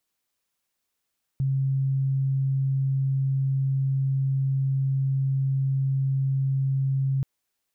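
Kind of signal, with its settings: tone sine 135 Hz -21 dBFS 5.83 s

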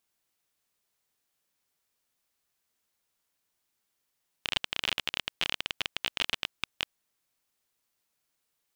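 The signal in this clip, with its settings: random clicks 25 per s -11 dBFS 2.45 s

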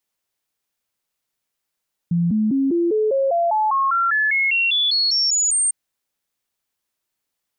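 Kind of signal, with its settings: stepped sine 171 Hz up, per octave 3, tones 18, 0.20 s, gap 0.00 s -15.5 dBFS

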